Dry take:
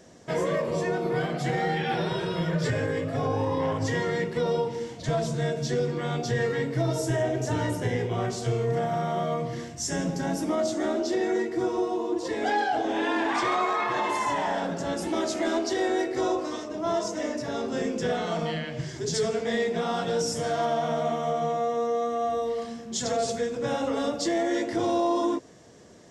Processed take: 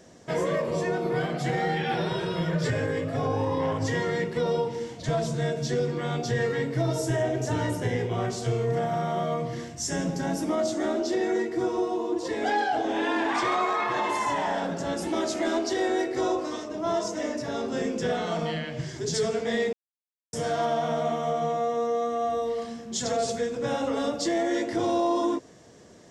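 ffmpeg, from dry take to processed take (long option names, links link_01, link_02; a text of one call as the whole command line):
ffmpeg -i in.wav -filter_complex "[0:a]asplit=3[link_01][link_02][link_03];[link_01]atrim=end=19.73,asetpts=PTS-STARTPTS,afade=type=out:start_time=19.726:duration=0.004:curve=hsin[link_04];[link_02]atrim=start=19.73:end=20.33,asetpts=PTS-STARTPTS,volume=0[link_05];[link_03]atrim=start=20.33,asetpts=PTS-STARTPTS,afade=type=in:duration=0.004:curve=hsin[link_06];[link_04][link_05][link_06]concat=n=3:v=0:a=1" out.wav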